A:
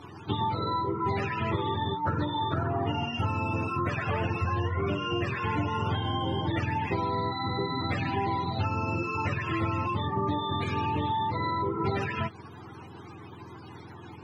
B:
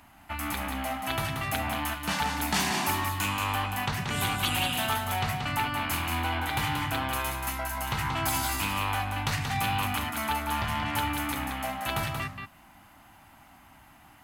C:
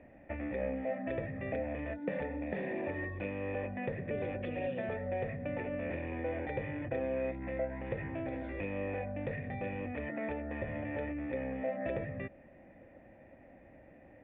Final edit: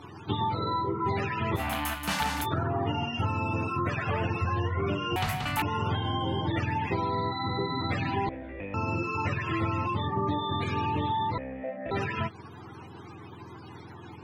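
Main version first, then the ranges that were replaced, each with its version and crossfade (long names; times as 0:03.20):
A
0:01.58–0:02.44: punch in from B, crossfade 0.06 s
0:05.16–0:05.62: punch in from B
0:08.29–0:08.74: punch in from C
0:11.38–0:11.91: punch in from C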